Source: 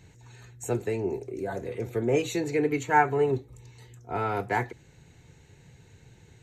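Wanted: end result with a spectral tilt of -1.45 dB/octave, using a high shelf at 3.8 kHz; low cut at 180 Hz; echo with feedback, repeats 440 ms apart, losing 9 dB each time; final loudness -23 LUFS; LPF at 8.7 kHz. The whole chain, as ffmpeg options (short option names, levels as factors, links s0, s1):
-af "highpass=180,lowpass=8700,highshelf=f=3800:g=-3.5,aecho=1:1:440|880|1320|1760:0.355|0.124|0.0435|0.0152,volume=2"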